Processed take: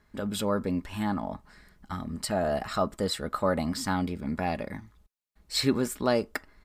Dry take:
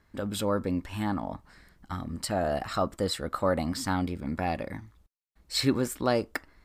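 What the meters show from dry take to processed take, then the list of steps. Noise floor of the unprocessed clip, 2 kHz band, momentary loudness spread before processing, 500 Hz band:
−67 dBFS, +0.5 dB, 11 LU, +0.5 dB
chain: comb filter 4.8 ms, depth 30%

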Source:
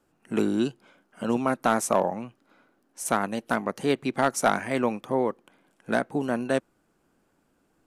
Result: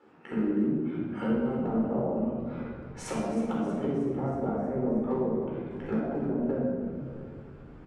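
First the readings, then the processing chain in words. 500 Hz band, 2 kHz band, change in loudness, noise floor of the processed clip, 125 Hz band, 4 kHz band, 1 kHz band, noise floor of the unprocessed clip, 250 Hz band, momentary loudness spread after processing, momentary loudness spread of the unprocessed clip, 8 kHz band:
−3.5 dB, −14.5 dB, −3.5 dB, −47 dBFS, +2.5 dB, −14.0 dB, −10.5 dB, −70 dBFS, +0.5 dB, 10 LU, 7 LU, −15.5 dB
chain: low-pass filter 2,600 Hz 12 dB per octave
treble cut that deepens with the level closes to 400 Hz, closed at −24 dBFS
high-pass filter 200 Hz 12 dB per octave
in parallel at +1.5 dB: brickwall limiter −22.5 dBFS, peak gain reduction 11 dB
on the sum: downward compressor 2 to 1, threshold −45 dBFS, peak gain reduction 15 dB
asymmetric clip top −28.5 dBFS, bottom −25 dBFS
double-tracking delay 13 ms −5.5 dB
echo with shifted repeats 317 ms, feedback 56%, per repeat −50 Hz, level −13.5 dB
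rectangular room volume 1,800 cubic metres, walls mixed, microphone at 4.2 metres

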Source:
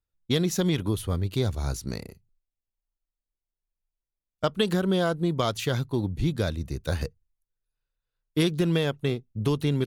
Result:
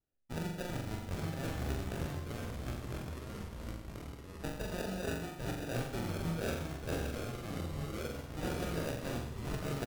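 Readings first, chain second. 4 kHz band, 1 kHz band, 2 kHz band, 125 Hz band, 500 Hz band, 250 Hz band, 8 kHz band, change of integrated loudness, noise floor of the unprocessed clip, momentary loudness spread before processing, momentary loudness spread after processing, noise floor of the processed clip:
−13.5 dB, −7.5 dB, −7.0 dB, −10.5 dB, −11.0 dB, −11.5 dB, −8.5 dB, −12.5 dB, below −85 dBFS, 8 LU, 7 LU, −48 dBFS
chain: elliptic low-pass filter 3,100 Hz
low shelf with overshoot 620 Hz −12 dB, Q 1.5
reversed playback
downward compressor 6 to 1, threshold −42 dBFS, peak gain reduction 18 dB
reversed playback
decimation without filtering 41×
on a send: flutter between parallel walls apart 7.3 metres, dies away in 0.7 s
on the sum: delay with pitch and tempo change per echo 770 ms, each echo −2 semitones, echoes 3
double-tracking delay 25 ms −12 dB
level +4.5 dB

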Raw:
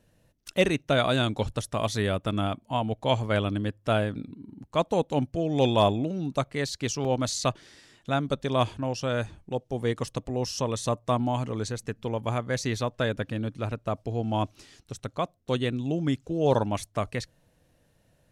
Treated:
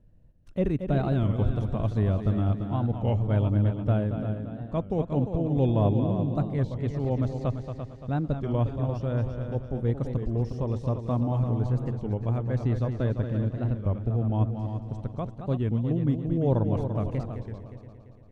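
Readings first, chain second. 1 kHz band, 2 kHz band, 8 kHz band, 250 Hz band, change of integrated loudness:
−7.0 dB, −12.5 dB, below −25 dB, +1.5 dB, +0.5 dB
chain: de-essing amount 85%
spectral tilt −4.5 dB per octave
on a send: echo machine with several playback heads 114 ms, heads second and third, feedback 48%, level −8.5 dB
on the sum: wow of a warped record 33 1/3 rpm, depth 160 cents
level −9 dB

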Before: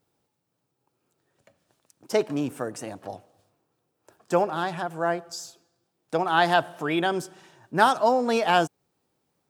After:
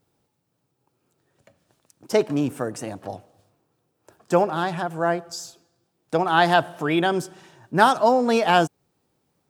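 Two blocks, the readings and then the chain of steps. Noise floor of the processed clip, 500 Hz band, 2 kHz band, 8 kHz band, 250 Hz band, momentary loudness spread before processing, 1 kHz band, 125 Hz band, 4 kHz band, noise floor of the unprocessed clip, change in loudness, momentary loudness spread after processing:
−74 dBFS, +3.5 dB, +2.5 dB, +2.5 dB, +4.5 dB, 17 LU, +3.0 dB, +6.0 dB, +2.5 dB, −78 dBFS, +3.0 dB, 17 LU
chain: low-shelf EQ 230 Hz +5 dB
level +2.5 dB

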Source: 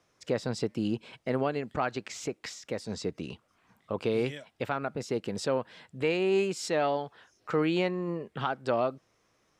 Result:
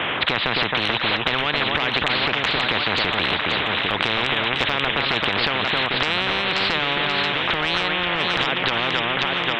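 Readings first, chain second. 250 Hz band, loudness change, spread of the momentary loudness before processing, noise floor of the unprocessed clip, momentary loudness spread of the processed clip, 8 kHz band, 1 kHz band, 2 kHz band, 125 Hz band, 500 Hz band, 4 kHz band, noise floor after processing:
+3.0 dB, +11.5 dB, 10 LU, −71 dBFS, 1 LU, can't be measured, +12.5 dB, +20.0 dB, +6.0 dB, +2.5 dB, +23.0 dB, −25 dBFS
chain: Butterworth low-pass 3,300 Hz 96 dB per octave
spectral tilt +4.5 dB per octave
downward compressor 3 to 1, threshold −37 dBFS, peak gain reduction 10 dB
on a send: delay that swaps between a low-pass and a high-pass 266 ms, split 2,400 Hz, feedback 70%, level −8 dB
on the sum: boost into a limiter +33 dB
every bin compressed towards the loudest bin 10 to 1
level −2 dB

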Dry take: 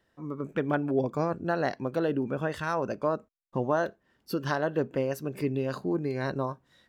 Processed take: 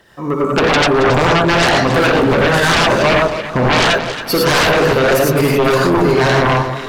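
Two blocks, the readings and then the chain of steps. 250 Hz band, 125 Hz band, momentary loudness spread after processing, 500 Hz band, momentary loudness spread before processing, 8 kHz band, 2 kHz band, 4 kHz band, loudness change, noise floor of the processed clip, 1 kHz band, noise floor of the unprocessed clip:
+14.5 dB, +17.0 dB, 5 LU, +16.5 dB, 7 LU, +27.5 dB, +22.5 dB, +30.0 dB, +17.5 dB, −26 dBFS, +19.0 dB, −73 dBFS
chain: phase shifter 1.7 Hz, delay 2.6 ms, feedback 35%
low-shelf EQ 390 Hz −8.5 dB
reverb whose tail is shaped and stops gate 130 ms rising, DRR −2 dB
sine wavefolder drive 18 dB, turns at −9.5 dBFS
delay that swaps between a low-pass and a high-pass 137 ms, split 1,200 Hz, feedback 67%, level −7.5 dB

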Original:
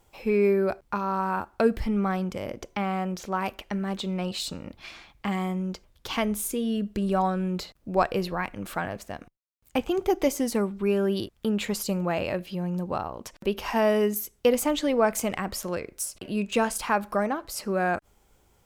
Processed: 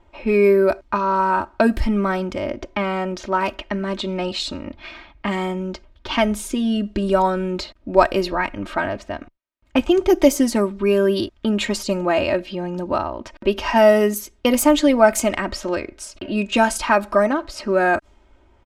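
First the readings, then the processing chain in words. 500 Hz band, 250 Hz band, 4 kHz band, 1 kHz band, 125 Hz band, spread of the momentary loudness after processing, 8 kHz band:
+8.0 dB, +7.0 dB, +7.5 dB, +7.5 dB, +3.0 dB, 12 LU, +5.0 dB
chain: low-pass that shuts in the quiet parts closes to 2,400 Hz, open at −19.5 dBFS
comb filter 3.2 ms, depth 76%
level +6.5 dB

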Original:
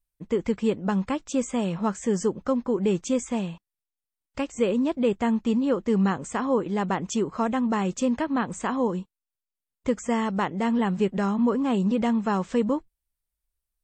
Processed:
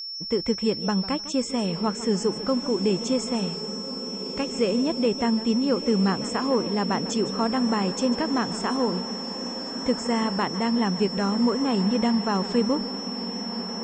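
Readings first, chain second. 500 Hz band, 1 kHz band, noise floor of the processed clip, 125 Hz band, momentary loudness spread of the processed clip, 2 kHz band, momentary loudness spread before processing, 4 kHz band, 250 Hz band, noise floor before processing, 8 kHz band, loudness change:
+0.5 dB, +0.5 dB, −34 dBFS, +0.5 dB, 7 LU, +0.5 dB, 5 LU, +13.5 dB, +0.5 dB, below −85 dBFS, +1.5 dB, +1.0 dB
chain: steady tone 5,400 Hz −32 dBFS
feedback delay with all-pass diffusion 1,473 ms, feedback 57%, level −10.5 dB
feedback echo with a swinging delay time 152 ms, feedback 32%, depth 151 cents, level −15 dB

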